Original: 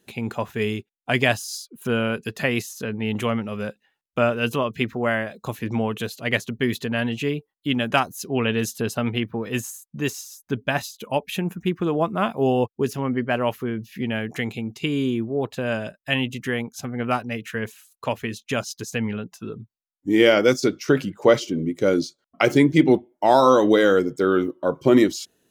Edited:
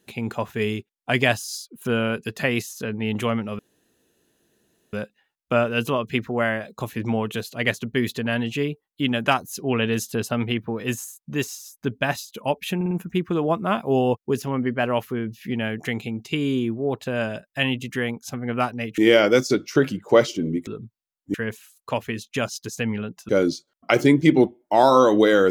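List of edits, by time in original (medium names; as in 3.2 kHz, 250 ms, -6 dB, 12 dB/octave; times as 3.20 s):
3.59 s: insert room tone 1.34 s
11.42 s: stutter 0.05 s, 4 plays
17.49–19.44 s: swap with 20.11–21.80 s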